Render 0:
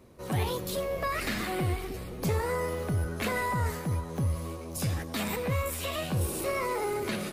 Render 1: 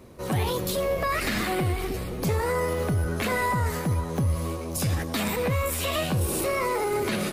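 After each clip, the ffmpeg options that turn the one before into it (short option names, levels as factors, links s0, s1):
-af "alimiter=level_in=1.06:limit=0.0631:level=0:latency=1:release=76,volume=0.944,volume=2.24"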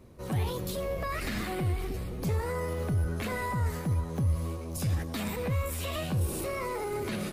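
-af "lowshelf=f=180:g=8,volume=0.376"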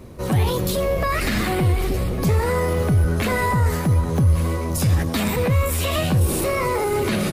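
-filter_complex "[0:a]asplit=2[s0][s1];[s1]alimiter=level_in=1.68:limit=0.0631:level=0:latency=1,volume=0.596,volume=0.794[s2];[s0][s2]amix=inputs=2:normalize=0,aecho=1:1:1154:0.178,volume=2.51"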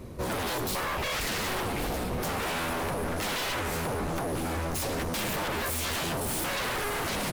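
-af "aeval=exprs='0.0631*(abs(mod(val(0)/0.0631+3,4)-2)-1)':c=same,volume=0.794"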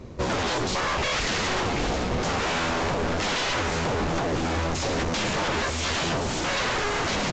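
-af "aeval=exprs='0.0501*(cos(1*acos(clip(val(0)/0.0501,-1,1)))-cos(1*PI/2))+0.00794*(cos(3*acos(clip(val(0)/0.0501,-1,1)))-cos(3*PI/2))':c=same,volume=2" -ar 16000 -c:a pcm_mulaw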